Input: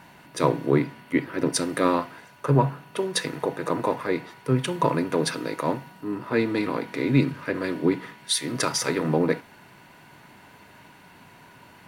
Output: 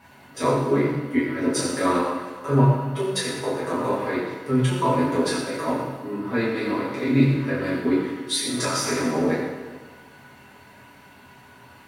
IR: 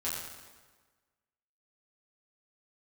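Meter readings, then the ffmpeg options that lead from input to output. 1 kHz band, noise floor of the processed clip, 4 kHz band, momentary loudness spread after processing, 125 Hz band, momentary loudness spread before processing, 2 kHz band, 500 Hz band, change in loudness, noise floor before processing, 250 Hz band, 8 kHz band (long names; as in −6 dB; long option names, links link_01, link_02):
+1.5 dB, −49 dBFS, +1.0 dB, 8 LU, +3.0 dB, 7 LU, +1.5 dB, +1.5 dB, +2.0 dB, −51 dBFS, +2.5 dB, +1.0 dB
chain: -filter_complex "[1:a]atrim=start_sample=2205,asetrate=43659,aresample=44100[link_01];[0:a][link_01]afir=irnorm=-1:irlink=0,volume=-3dB"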